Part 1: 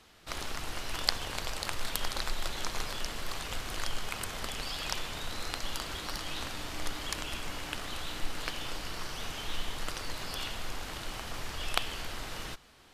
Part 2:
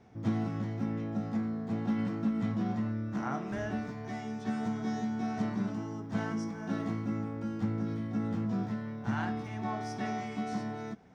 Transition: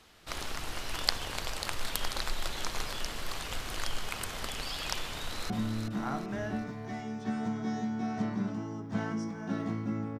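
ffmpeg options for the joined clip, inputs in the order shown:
ffmpeg -i cue0.wav -i cue1.wav -filter_complex "[0:a]apad=whole_dur=10.19,atrim=end=10.19,atrim=end=5.502[link_01];[1:a]atrim=start=2.698:end=7.39[link_02];[link_01][link_02]acrossfade=duration=0.004:curve1=hsin:curve2=hsin,asplit=2[link_03][link_04];[link_04]afade=type=in:start_time=5.14:duration=0.01,afade=type=out:start_time=5.5:duration=0.01,aecho=0:1:380|760|1140|1520|1900:0.473151|0.212918|0.0958131|0.0431159|0.0194022[link_05];[link_03][link_05]amix=inputs=2:normalize=0" out.wav

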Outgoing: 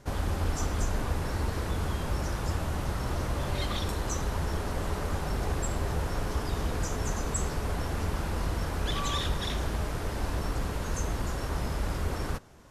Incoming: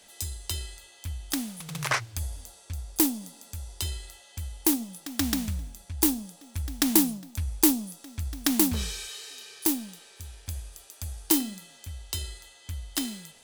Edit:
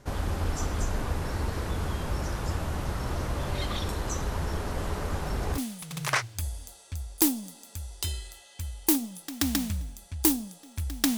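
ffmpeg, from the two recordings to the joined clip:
ffmpeg -i cue0.wav -i cue1.wav -filter_complex "[1:a]asplit=2[link_01][link_02];[0:a]apad=whole_dur=11.17,atrim=end=11.17,atrim=end=5.582[link_03];[link_02]atrim=start=1.358:end=6.95[link_04];[link_01]atrim=start=0.56:end=1.36,asetpts=PTS-STARTPTS,volume=-14.5dB,afade=type=in:duration=0.004:curve=hsin,afade=type=out:start_time=0.796:duration=0.004:curve=hsin,adelay=4780[link_05];[link_03][link_04]acrossfade=duration=0.004:curve1=hsin:curve2=hsin[link_06];[link_06][link_05]amix=inputs=2:normalize=0" out.wav

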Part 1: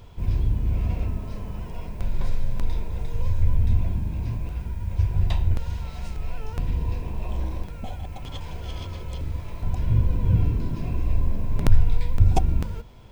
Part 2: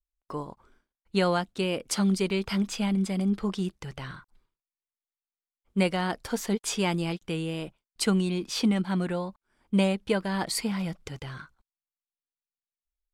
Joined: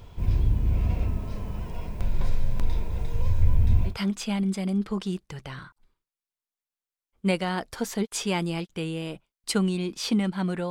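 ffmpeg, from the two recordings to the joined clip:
ffmpeg -i cue0.wav -i cue1.wav -filter_complex "[0:a]apad=whole_dur=10.7,atrim=end=10.7,atrim=end=3.96,asetpts=PTS-STARTPTS[link_01];[1:a]atrim=start=2.36:end=9.22,asetpts=PTS-STARTPTS[link_02];[link_01][link_02]acrossfade=duration=0.12:curve1=tri:curve2=tri" out.wav

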